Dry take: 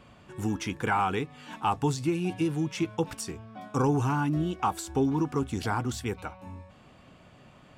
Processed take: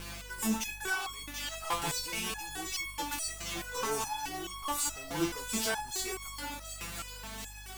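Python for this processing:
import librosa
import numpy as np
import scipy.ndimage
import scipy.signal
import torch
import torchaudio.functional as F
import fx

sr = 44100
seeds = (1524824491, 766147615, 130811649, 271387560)

p1 = scipy.signal.sosfilt(scipy.signal.butter(4, 60.0, 'highpass', fs=sr, output='sos'), x)
p2 = fx.tilt_eq(p1, sr, slope=4.0)
p3 = fx.transient(p2, sr, attack_db=4, sustain_db=-3)
p4 = fx.add_hum(p3, sr, base_hz=50, snr_db=13)
p5 = fx.quant_dither(p4, sr, seeds[0], bits=8, dither='none')
p6 = fx.fuzz(p5, sr, gain_db=40.0, gate_db=-49.0)
p7 = p6 + fx.echo_thinned(p6, sr, ms=731, feedback_pct=55, hz=970.0, wet_db=-8.0, dry=0)
p8 = fx.resonator_held(p7, sr, hz=4.7, low_hz=170.0, high_hz=1100.0)
y = p8 * librosa.db_to_amplitude(-4.0)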